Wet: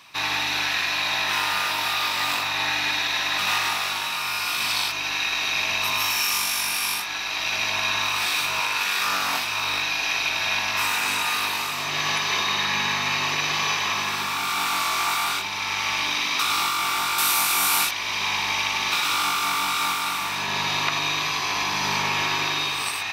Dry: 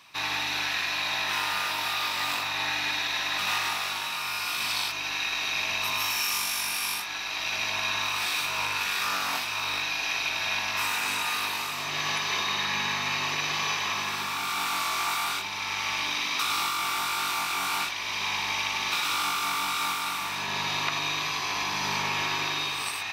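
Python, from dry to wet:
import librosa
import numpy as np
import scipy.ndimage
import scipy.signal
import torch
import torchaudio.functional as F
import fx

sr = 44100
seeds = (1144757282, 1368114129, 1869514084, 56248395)

y = fx.highpass(x, sr, hz=fx.line((8.59, 400.0), (9.07, 110.0)), slope=6, at=(8.59, 9.07), fade=0.02)
y = fx.peak_eq(y, sr, hz=12000.0, db=13.5, octaves=1.3, at=(17.18, 17.91))
y = y * librosa.db_to_amplitude(4.5)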